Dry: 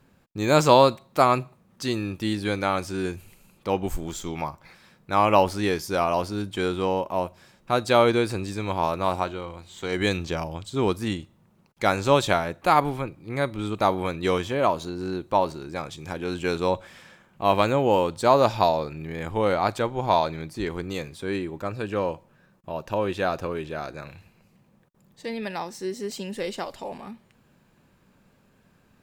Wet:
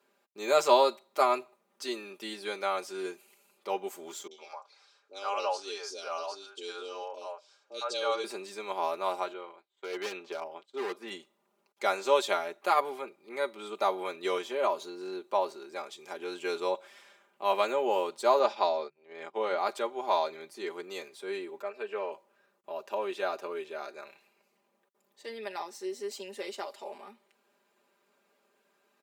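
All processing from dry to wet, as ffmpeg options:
-filter_complex "[0:a]asettb=1/sr,asplit=3[s0][s1][s2];[s0]atrim=end=4.274[s3];[s1]atrim=start=4.27:end=8.24,asetpts=PTS-STARTPTS,afade=t=in:d=0.004:c=qsin,afade=t=out:st=3.966:d=0.004:c=qsin,highpass=f=370:w=0.5412,highpass=f=370:w=1.3066,equalizer=f=380:t=q:w=4:g=-8,equalizer=f=690:t=q:w=4:g=-6,equalizer=f=990:t=q:w=4:g=-6,equalizer=f=2000:t=q:w=4:g=-10,equalizer=f=4300:t=q:w=4:g=4,equalizer=f=6000:t=q:w=4:g=4,lowpass=f=7900:w=0.5412,lowpass=f=7900:w=1.3066,afreqshift=-22,acrossover=split=490|2200[s4][s5][s6];[s6]adelay=40[s7];[s5]adelay=110[s8];[s4][s8][s7]amix=inputs=3:normalize=0,atrim=end_sample=175077[s9];[s2]atrim=start=8.236[s10];[s3][s9]acrossfade=d=0.004:c1=hsin:c2=qsin[s11];[s11][s10]acrossfade=d=0.004:c1=qsin:c2=hsin,asettb=1/sr,asplit=3[s12][s13][s14];[s12]atrim=end=9.334[s15];[s13]atrim=start=9.33:end=11.11,asetpts=PTS-STARTPTS,afade=t=in:d=0.004:c=qsin,afade=t=out:st=1.776:d=0.004:c=qsin,bass=f=250:g=-6,treble=f=4000:g=-14,agate=range=0.0224:threshold=0.0112:ratio=3:release=100:detection=peak,aeval=exprs='0.0891*(abs(mod(val(0)/0.0891+3,4)-2)-1)':c=same[s16];[s14]atrim=start=11.106[s17];[s15][s16]acrossfade=d=0.004:c1=hsin:c2=qsin[s18];[s18][s17]acrossfade=d=0.004:c1=qsin:c2=hsin,asettb=1/sr,asplit=3[s19][s20][s21];[s19]atrim=end=18.394[s22];[s20]atrim=start=18.39:end=19.58,asetpts=PTS-STARTPTS,afade=t=in:d=0.004:c=qsin,afade=t=out:st=1.186:d=0.004:c=qsin,lowpass=5800,agate=range=0.0251:threshold=0.0224:ratio=16:release=100:detection=peak,bandreject=f=50:t=h:w=6,bandreject=f=100:t=h:w=6,bandreject=f=150:t=h:w=6,bandreject=f=200:t=h:w=6[s23];[s21]atrim=start=19.576[s24];[s22][s23]acrossfade=d=0.004:c1=hsin:c2=qsin[s25];[s25][s24]acrossfade=d=0.004:c1=qsin:c2=hsin,asettb=1/sr,asplit=3[s26][s27][s28];[s26]atrim=end=21.624[s29];[s27]atrim=start=21.62:end=22.12,asetpts=PTS-STARTPTS,afade=t=in:d=0.004:c=qsin,afade=t=out:st=0.496:d=0.004:c=qsin,bass=f=250:g=-12,treble=f=4000:g=-12,aecho=1:1:4.6:0.52,atrim=end_sample=22050[s30];[s28]atrim=start=22.116[s31];[s29][s30]acrossfade=d=0.004:c1=hsin:c2=qsin[s32];[s32][s31]acrossfade=d=0.004:c1=qsin:c2=hsin,highpass=f=340:w=0.5412,highpass=f=340:w=1.3066,bandreject=f=1700:w=13,aecho=1:1:5:0.79,volume=0.398"

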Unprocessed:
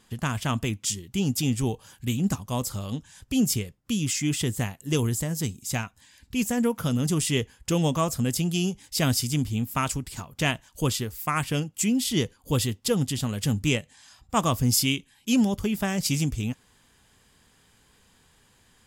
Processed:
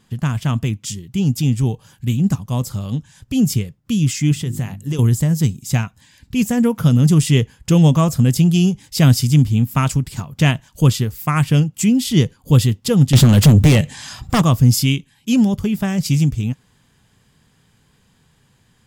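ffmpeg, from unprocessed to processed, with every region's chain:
-filter_complex "[0:a]asettb=1/sr,asplit=3[s0][s1][s2];[s0]atrim=end=4.324[s3];[s1]atrim=start=4.32:end=4.99,asetpts=PTS-STARTPTS,afade=t=in:d=0.004:c=qsin,afade=t=out:st=0.666:d=0.004:c=qsin,bandreject=f=50:t=h:w=6,bandreject=f=100:t=h:w=6,bandreject=f=150:t=h:w=6,bandreject=f=200:t=h:w=6,bandreject=f=250:t=h:w=6,bandreject=f=300:t=h:w=6,bandreject=f=350:t=h:w=6,acompressor=threshold=0.0355:ratio=5:attack=3.2:release=140:knee=1:detection=peak[s4];[s2]atrim=start=4.986[s5];[s3][s4]acrossfade=d=0.004:c1=hsin:c2=qsin[s6];[s6][s5]acrossfade=d=0.004:c1=qsin:c2=hsin,asettb=1/sr,asplit=3[s7][s8][s9];[s7]atrim=end=13.134[s10];[s8]atrim=start=13.13:end=14.42,asetpts=PTS-STARTPTS,afade=t=in:d=0.004:c=qsin,afade=t=out:st=1.286:d=0.004:c=qsin,acompressor=threshold=0.0562:ratio=10:attack=3.2:release=140:knee=1:detection=peak,aeval=exprs='0.15*sin(PI/2*3.55*val(0)/0.15)':c=same[s11];[s9]atrim=start=14.416[s12];[s10][s11]acrossfade=d=0.004:c1=hsin:c2=qsin[s13];[s13][s12]acrossfade=d=0.004:c1=qsin:c2=hsin,equalizer=f=9600:w=1.1:g=-3,dynaudnorm=f=380:g=21:m=1.58,equalizer=f=140:w=1.1:g=10.5,volume=1.12"

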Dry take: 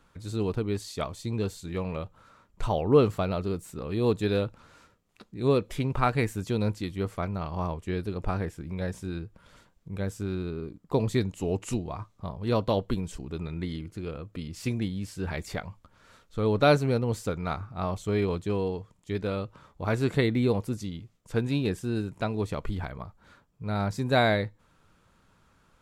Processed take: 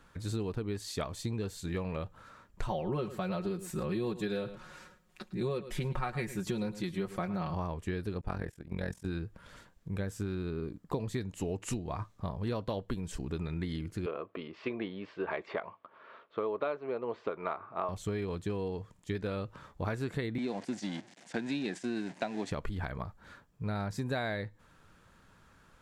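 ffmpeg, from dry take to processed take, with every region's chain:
-filter_complex "[0:a]asettb=1/sr,asplit=3[s0][s1][s2];[s0]atrim=end=2.684[s3];[s1]atrim=start=2.68:end=7.54,asetpts=PTS-STARTPTS,afade=t=in:d=0.004:c=qsin,afade=t=out:st=4.856:d=0.004:c=qsin,aecho=1:1:5.5:0.89,atrim=end_sample=214326,aecho=1:1:108:0.141,atrim=end_sample=214326[s4];[s2]atrim=start=7.536[s5];[s3][s4]acrossfade=d=0.004:c1=hsin:c2=qsin[s6];[s6][s5]acrossfade=d=0.004:c1=qsin:c2=hsin,asettb=1/sr,asplit=3[s7][s8][s9];[s7]atrim=end=8.214[s10];[s8]atrim=start=8.21:end=9.06,asetpts=PTS-STARTPTS,afade=t=in:d=0.004:c=qsin,afade=t=out:st=0.846:d=0.004:c=qsin,highshelf=f=7800:g=4,agate=range=0.316:threshold=0.0141:ratio=16:release=100:detection=peak,tremolo=f=43:d=0.857[s11];[s9]atrim=start=9.056[s12];[s10][s11]acrossfade=d=0.004:c1=hsin:c2=qsin[s13];[s13][s12]acrossfade=d=0.004:c1=qsin:c2=hsin,asettb=1/sr,asplit=3[s14][s15][s16];[s14]atrim=end=14.064[s17];[s15]atrim=start=14.06:end=17.89,asetpts=PTS-STARTPTS,afade=t=in:d=0.004:c=qsin,afade=t=out:st=3.826:d=0.004:c=qsin,highpass=370,equalizer=f=390:t=q:w=4:g=7,equalizer=f=680:t=q:w=4:g=9,equalizer=f=1100:t=q:w=4:g=8,equalizer=f=1700:t=q:w=4:g=-4,lowpass=f=3000:w=0.5412,lowpass=f=3000:w=1.3066,bandreject=f=730:w=9.7[s18];[s16]atrim=start=17.886[s19];[s17][s18]acrossfade=d=0.004:c1=hsin:c2=qsin[s20];[s20][s19]acrossfade=d=0.004:c1=qsin:c2=hsin,asettb=1/sr,asplit=3[s21][s22][s23];[s21]atrim=end=20.384[s24];[s22]atrim=start=20.38:end=22.51,asetpts=PTS-STARTPTS,afade=t=in:d=0.004:c=qsin,afade=t=out:st=2.126:d=0.004:c=qsin,aeval=exprs='val(0)+0.5*0.0126*sgn(val(0))':c=same,agate=range=0.316:threshold=0.0141:ratio=16:release=100:detection=peak,highpass=f=200:w=0.5412,highpass=f=200:w=1.3066,equalizer=f=450:t=q:w=4:g=-8,equalizer=f=720:t=q:w=4:g=6,equalizer=f=1200:t=q:w=4:g=-8,equalizer=f=2000:t=q:w=4:g=4,lowpass=f=8000:w=0.5412,lowpass=f=8000:w=1.3066[s25];[s23]atrim=start=22.506[s26];[s24][s25]acrossfade=d=0.004:c1=hsin:c2=qsin[s27];[s27][s26]acrossfade=d=0.004:c1=qsin:c2=hsin,equalizer=f=1700:t=o:w=0.26:g=5.5,acompressor=threshold=0.0251:ratio=12,volume=1.19"

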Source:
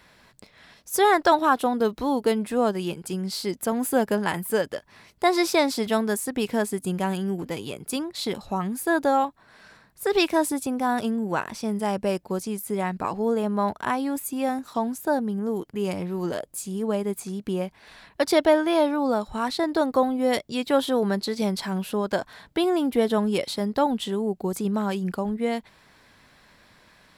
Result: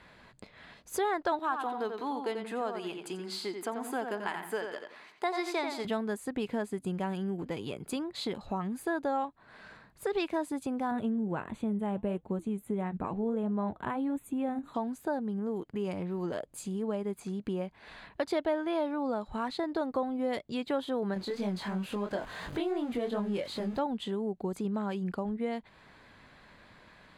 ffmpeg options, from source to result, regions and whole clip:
-filter_complex "[0:a]asettb=1/sr,asplit=3[s0][s1][s2];[s0]atrim=end=1.394[s3];[s1]atrim=start=1.39:end=5.85,asetpts=PTS-STARTPTS,afade=t=in:d=0.004:c=qsin,afade=t=out:st=4.456:d=0.004:c=qsin,highpass=390,equalizer=f=540:w=5.7:g=-12.5,asplit=2[s4][s5];[s5]adelay=88,lowpass=f=4500:p=1,volume=0.473,asplit=2[s6][s7];[s7]adelay=88,lowpass=f=4500:p=1,volume=0.26,asplit=2[s8][s9];[s9]adelay=88,lowpass=f=4500:p=1,volume=0.26[s10];[s4][s6][s8][s10]amix=inputs=4:normalize=0,atrim=end_sample=196686[s11];[s2]atrim=start=5.846[s12];[s3][s11]acrossfade=d=0.004:c1=hsin:c2=qsin[s13];[s13][s12]acrossfade=d=0.004:c1=qsin:c2=hsin,asettb=1/sr,asplit=3[s14][s15][s16];[s14]atrim=end=10.914[s17];[s15]atrim=start=10.91:end=14.74,asetpts=PTS-STARTPTS,afade=t=in:d=0.004:c=qsin,afade=t=out:st=3.826:d=0.004:c=qsin,lowshelf=f=390:g=10.5,flanger=delay=2.7:depth=3.5:regen=-79:speed=1.5:shape=triangular,asuperstop=centerf=5200:order=4:qfactor=2[s18];[s16]atrim=start=14.736[s19];[s17][s18]acrossfade=d=0.004:c1=hsin:c2=qsin[s20];[s20][s19]acrossfade=d=0.004:c1=qsin:c2=hsin,asettb=1/sr,asplit=3[s21][s22][s23];[s21]atrim=end=21.144[s24];[s22]atrim=start=21.14:end=23.79,asetpts=PTS-STARTPTS,afade=t=in:d=0.004:c=qsin,afade=t=out:st=2.646:d=0.004:c=qsin,aeval=exprs='val(0)+0.5*0.0251*sgn(val(0))':c=same,flanger=delay=20:depth=5.2:speed=2.9[s25];[s23]atrim=start=23.786[s26];[s24][s25]acrossfade=d=0.004:c1=hsin:c2=qsin[s27];[s27][s26]acrossfade=d=0.004:c1=qsin:c2=hsin,aemphasis=mode=reproduction:type=50fm,bandreject=f=5500:w=6.2,acompressor=threshold=0.0158:ratio=2"

